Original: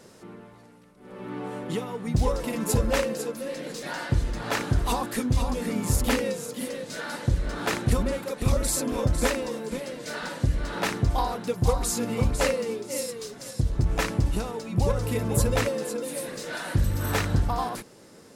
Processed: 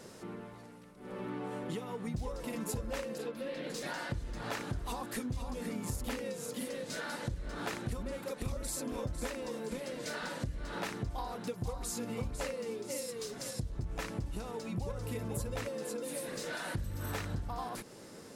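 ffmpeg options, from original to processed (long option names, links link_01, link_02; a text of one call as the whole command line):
ffmpeg -i in.wav -filter_complex "[0:a]asettb=1/sr,asplit=3[link_01][link_02][link_03];[link_01]atrim=end=3.184[link_04];[link_02]atrim=start=3.18:end=3.7,asetpts=PTS-STARTPTS,afade=type=in:duration=0.004:curve=qsin,afade=type=out:start_time=0.516:duration=0.004:curve=qsin,highshelf=frequency=4900:width_type=q:width=1.5:gain=-9.5[link_05];[link_03]atrim=start=3.696[link_06];[link_04][link_05]acrossfade=duration=0.004:curve1=hsin:curve2=qsin[link_07];[link_07][link_06]acrossfade=duration=0.004:curve1=qsin:curve2=hsin,acompressor=threshold=-37dB:ratio=4" out.wav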